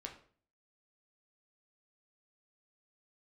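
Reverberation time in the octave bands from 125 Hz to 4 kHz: 0.60, 0.55, 0.50, 0.45, 0.40, 0.35 s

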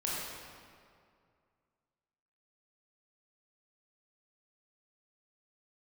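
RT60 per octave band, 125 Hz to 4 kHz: 2.5, 2.3, 2.3, 2.2, 1.8, 1.5 s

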